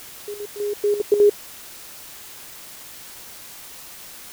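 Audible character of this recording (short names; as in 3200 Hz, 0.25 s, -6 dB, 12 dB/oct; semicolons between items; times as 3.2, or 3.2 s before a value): chopped level 5 Hz, depth 65%, duty 70%; a quantiser's noise floor 8-bit, dither triangular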